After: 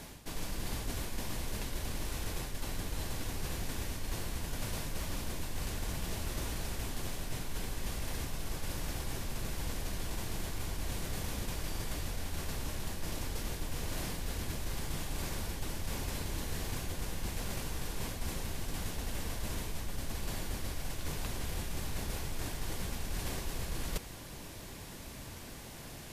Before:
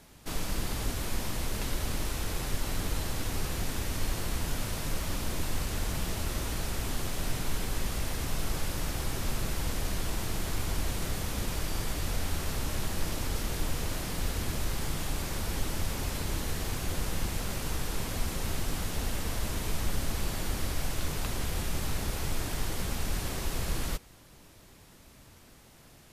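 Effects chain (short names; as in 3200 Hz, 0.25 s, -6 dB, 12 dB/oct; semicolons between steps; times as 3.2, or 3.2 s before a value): notch 1300 Hz, Q 13; reverse; compressor 12:1, threshold -41 dBFS, peak gain reduction 19 dB; reverse; gain +8.5 dB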